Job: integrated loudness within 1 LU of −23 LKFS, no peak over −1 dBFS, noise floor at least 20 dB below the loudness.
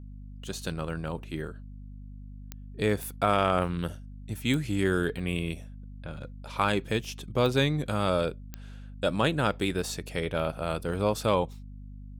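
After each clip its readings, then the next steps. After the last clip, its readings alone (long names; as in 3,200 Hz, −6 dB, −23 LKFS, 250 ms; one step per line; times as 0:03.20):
number of clicks 5; mains hum 50 Hz; hum harmonics up to 250 Hz; level of the hum −41 dBFS; integrated loudness −29.0 LKFS; sample peak −11.0 dBFS; target loudness −23.0 LKFS
→ click removal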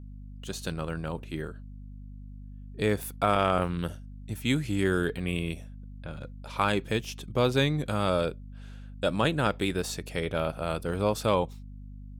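number of clicks 0; mains hum 50 Hz; hum harmonics up to 250 Hz; level of the hum −41 dBFS
→ mains-hum notches 50/100/150/200/250 Hz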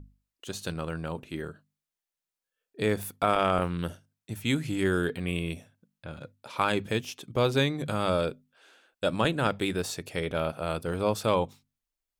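mains hum none found; integrated loudness −29.5 LKFS; sample peak −9.5 dBFS; target loudness −23.0 LKFS
→ level +6.5 dB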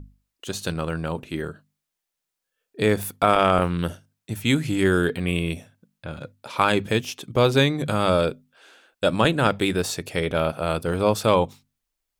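integrated loudness −23.0 LKFS; sample peak −3.0 dBFS; background noise floor −83 dBFS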